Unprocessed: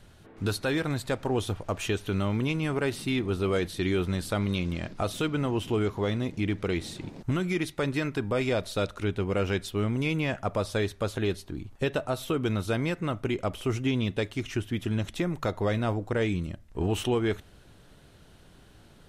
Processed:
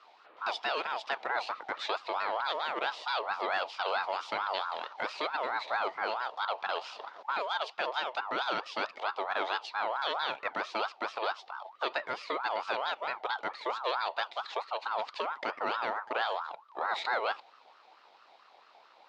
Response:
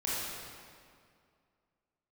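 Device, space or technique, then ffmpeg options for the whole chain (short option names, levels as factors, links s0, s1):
voice changer toy: -af "aeval=exprs='val(0)*sin(2*PI*1000*n/s+1000*0.25/4.5*sin(2*PI*4.5*n/s))':c=same,highpass=470,equalizer=f=1100:t=q:w=4:g=-5,equalizer=f=1600:t=q:w=4:g=-3,equalizer=f=3800:t=q:w=4:g=4,lowpass=f=4900:w=0.5412,lowpass=f=4900:w=1.3066"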